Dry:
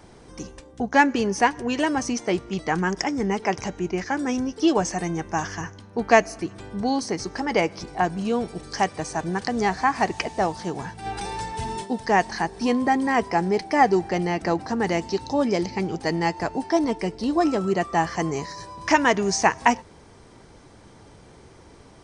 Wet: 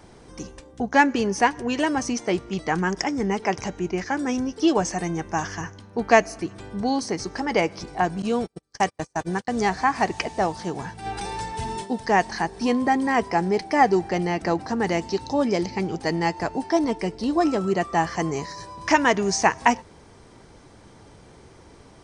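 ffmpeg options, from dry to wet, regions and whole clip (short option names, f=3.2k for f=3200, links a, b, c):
-filter_complex "[0:a]asettb=1/sr,asplit=3[a][b][c];[a]atrim=end=8.224[d];[b]atrim=start=8.22:end=9.7,asetpts=PTS-STARTPTS,afade=t=in:d=0.004:c=qsin,afade=t=out:st=1.476:d=0.004:c=qsin,agate=range=-38dB:threshold=-30dB:ratio=16:release=100:detection=peak,highshelf=f=5k:g=4.5[e];[c]atrim=start=9.696[f];[d][e]acrossfade=d=0.004:c1=hsin:c2=qsin[g];[g][f]acrossfade=d=0.004:c1=qsin:c2=hsin"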